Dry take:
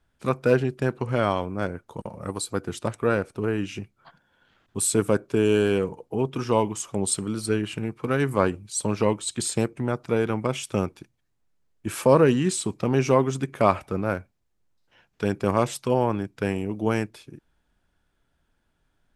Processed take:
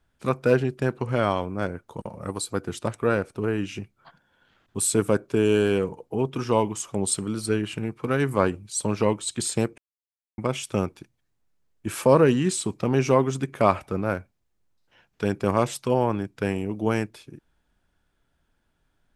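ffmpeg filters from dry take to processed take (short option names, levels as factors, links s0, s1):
-filter_complex "[0:a]asplit=3[s0][s1][s2];[s0]atrim=end=9.78,asetpts=PTS-STARTPTS,afade=t=out:st=9.776:d=0.004:c=hsin[s3];[s1]atrim=start=9.78:end=10.38,asetpts=PTS-STARTPTS,volume=0[s4];[s2]atrim=start=10.38,asetpts=PTS-STARTPTS,afade=t=in:d=0.004:c=hsin[s5];[s3][s4][s5]concat=n=3:v=0:a=1"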